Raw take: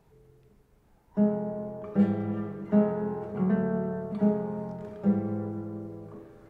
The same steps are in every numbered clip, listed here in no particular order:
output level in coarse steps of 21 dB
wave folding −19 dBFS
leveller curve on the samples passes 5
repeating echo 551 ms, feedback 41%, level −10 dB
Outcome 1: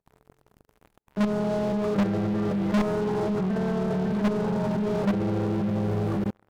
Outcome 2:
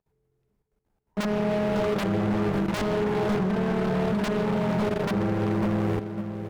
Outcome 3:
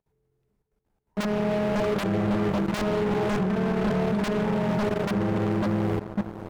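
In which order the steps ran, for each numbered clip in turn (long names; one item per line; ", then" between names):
repeating echo, then output level in coarse steps, then wave folding, then leveller curve on the samples
output level in coarse steps, then leveller curve on the samples, then repeating echo, then wave folding
output level in coarse steps, then repeating echo, then leveller curve on the samples, then wave folding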